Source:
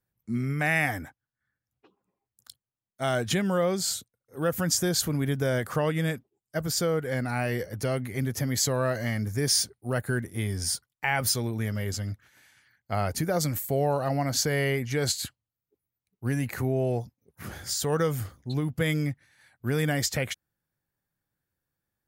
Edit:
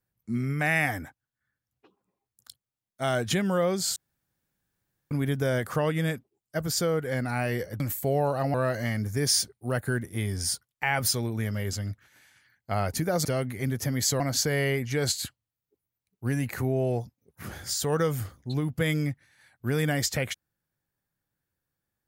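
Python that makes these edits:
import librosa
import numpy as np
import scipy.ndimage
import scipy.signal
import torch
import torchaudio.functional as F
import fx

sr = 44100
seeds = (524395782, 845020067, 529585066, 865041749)

y = fx.edit(x, sr, fx.room_tone_fill(start_s=3.96, length_s=1.15),
    fx.swap(start_s=7.8, length_s=0.95, other_s=13.46, other_length_s=0.74), tone=tone)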